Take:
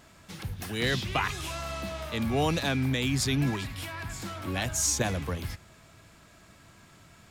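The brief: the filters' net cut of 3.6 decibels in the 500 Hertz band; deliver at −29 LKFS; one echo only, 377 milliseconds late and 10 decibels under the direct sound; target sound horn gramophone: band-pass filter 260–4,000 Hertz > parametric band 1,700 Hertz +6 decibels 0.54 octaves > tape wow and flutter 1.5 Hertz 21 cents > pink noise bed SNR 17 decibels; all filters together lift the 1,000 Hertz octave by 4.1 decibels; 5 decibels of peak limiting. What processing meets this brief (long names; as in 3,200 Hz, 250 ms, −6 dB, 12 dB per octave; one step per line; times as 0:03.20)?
parametric band 500 Hz −6.5 dB
parametric band 1,000 Hz +6.5 dB
brickwall limiter −19 dBFS
band-pass filter 260–4,000 Hz
parametric band 1,700 Hz +6 dB 0.54 octaves
single-tap delay 377 ms −10 dB
tape wow and flutter 1.5 Hz 21 cents
pink noise bed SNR 17 dB
level +3 dB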